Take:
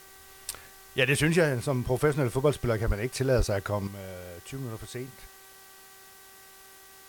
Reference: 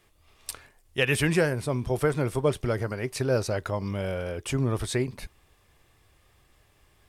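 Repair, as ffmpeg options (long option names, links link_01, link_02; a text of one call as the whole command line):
ffmpeg -i in.wav -filter_complex "[0:a]bandreject=frequency=385.9:width_type=h:width=4,bandreject=frequency=771.8:width_type=h:width=4,bandreject=frequency=1157.7:width_type=h:width=4,bandreject=frequency=1543.6:width_type=h:width=4,bandreject=frequency=1929.5:width_type=h:width=4,asplit=3[link_01][link_02][link_03];[link_01]afade=type=out:start_time=2.86:duration=0.02[link_04];[link_02]highpass=frequency=140:width=0.5412,highpass=frequency=140:width=1.3066,afade=type=in:start_time=2.86:duration=0.02,afade=type=out:start_time=2.98:duration=0.02[link_05];[link_03]afade=type=in:start_time=2.98:duration=0.02[link_06];[link_04][link_05][link_06]amix=inputs=3:normalize=0,asplit=3[link_07][link_08][link_09];[link_07]afade=type=out:start_time=3.37:duration=0.02[link_10];[link_08]highpass=frequency=140:width=0.5412,highpass=frequency=140:width=1.3066,afade=type=in:start_time=3.37:duration=0.02,afade=type=out:start_time=3.49:duration=0.02[link_11];[link_09]afade=type=in:start_time=3.49:duration=0.02[link_12];[link_10][link_11][link_12]amix=inputs=3:normalize=0,afwtdn=0.0025,asetnsamples=nb_out_samples=441:pad=0,asendcmd='3.87 volume volume 10.5dB',volume=0dB" out.wav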